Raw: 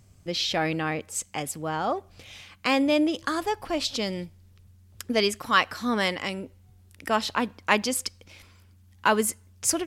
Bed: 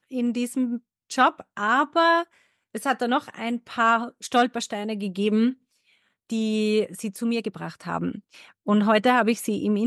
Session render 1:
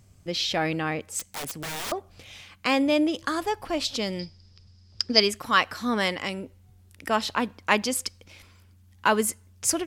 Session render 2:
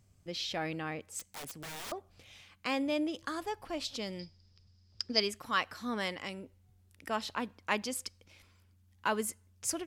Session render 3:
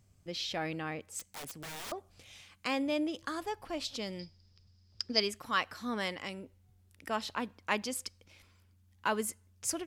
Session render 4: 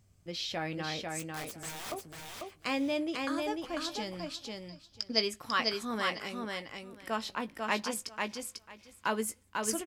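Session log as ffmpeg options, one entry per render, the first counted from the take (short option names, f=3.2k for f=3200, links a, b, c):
-filter_complex "[0:a]asettb=1/sr,asplit=3[a][b][c];[a]atrim=end=1.194[d];[b]atrim=start=1.19:end=1.92,asetpts=PTS-STARTPTS,afade=t=in:d=0.004:c=qsin,afade=t=out:st=0.726:d=0.004:c=qsin,aeval=exprs='(mod(25.1*val(0)+1,2)-1)/25.1':c=same[e];[c]atrim=start=1.916[f];[d][e]acrossfade=d=0.004:c1=hsin:c2=qsin[g];[g][f]acrossfade=d=0.004:c1=qsin:c2=hsin,asettb=1/sr,asplit=3[h][i][j];[h]atrim=end=4.194[k];[i]atrim=start=4.19:end=5.2,asetpts=PTS-STARTPTS,afade=t=in:d=0.004:c=qsin,afade=t=out:st=1.006:d=0.004:c=qsin,lowpass=f=5k:t=q:w=13[l];[j]atrim=start=5.196[m];[k][l]acrossfade=d=0.004:c1=hsin:c2=qsin[n];[n][m]acrossfade=d=0.004:c1=qsin:c2=hsin"
-af "volume=-10dB"
-filter_complex "[0:a]asettb=1/sr,asplit=3[a][b][c];[a]atrim=end=1.984[d];[b]atrim=start=1.98:end=2.68,asetpts=PTS-STARTPTS,afade=t=in:d=0.004:c=qsin,afade=t=out:st=0.696:d=0.004:c=qsin,equalizer=f=8.5k:w=0.76:g=6[e];[c]atrim=start=2.676[f];[d][e]acrossfade=d=0.004:c1=hsin:c2=qsin[g];[g][f]acrossfade=d=0.004:c1=qsin:c2=hsin"
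-filter_complex "[0:a]asplit=2[a][b];[b]adelay=18,volume=-11dB[c];[a][c]amix=inputs=2:normalize=0,asplit=2[d][e];[e]aecho=0:1:495|990|1485:0.668|0.1|0.015[f];[d][f]amix=inputs=2:normalize=0"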